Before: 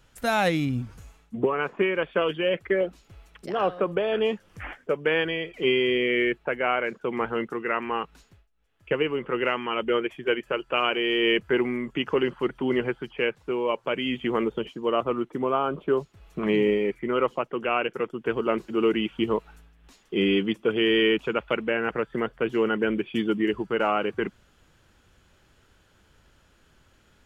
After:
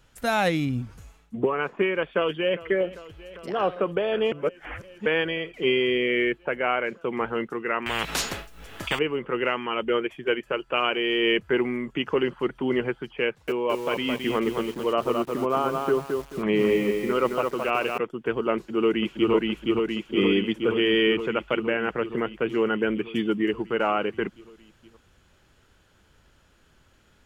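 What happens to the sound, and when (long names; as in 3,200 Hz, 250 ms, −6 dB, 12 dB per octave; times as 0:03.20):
0:02.11–0:02.68: delay throw 400 ms, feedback 85%, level −18 dB
0:04.32–0:05.06: reverse
0:07.86–0:08.99: every bin compressed towards the loudest bin 10 to 1
0:13.26–0:17.98: feedback echo at a low word length 217 ms, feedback 35%, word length 7 bits, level −4 dB
0:18.55–0:19.32: delay throw 470 ms, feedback 75%, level −1 dB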